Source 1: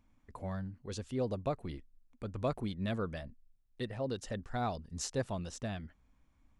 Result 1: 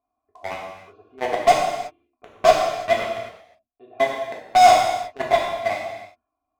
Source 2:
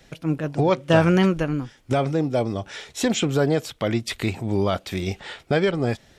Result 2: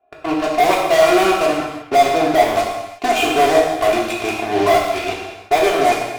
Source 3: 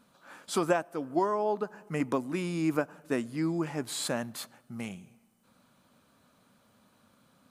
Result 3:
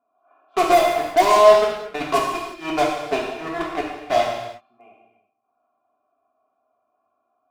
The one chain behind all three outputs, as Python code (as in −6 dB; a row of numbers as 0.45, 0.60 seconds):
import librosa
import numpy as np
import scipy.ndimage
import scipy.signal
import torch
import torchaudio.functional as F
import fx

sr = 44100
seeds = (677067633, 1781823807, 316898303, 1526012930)

p1 = fx.vowel_filter(x, sr, vowel='a')
p2 = p1 + 0.94 * np.pad(p1, (int(2.9 * sr / 1000.0), 0))[:len(p1)]
p3 = fx.env_lowpass(p2, sr, base_hz=1200.0, full_db=-30.0)
p4 = fx.fuzz(p3, sr, gain_db=38.0, gate_db=-42.0)
p5 = p3 + (p4 * 10.0 ** (-3.5 / 20.0))
p6 = fx.rev_gated(p5, sr, seeds[0], gate_ms=390, shape='falling', drr_db=-2.5)
y = librosa.util.normalize(p6) * 10.0 ** (-1.5 / 20.0)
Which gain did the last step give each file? +5.0, +0.5, +0.5 decibels